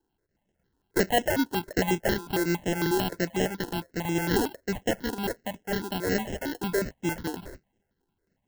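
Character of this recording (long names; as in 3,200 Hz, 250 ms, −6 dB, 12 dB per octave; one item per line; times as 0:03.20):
aliases and images of a low sample rate 1,200 Hz, jitter 0%
notches that jump at a steady rate 11 Hz 600–4,400 Hz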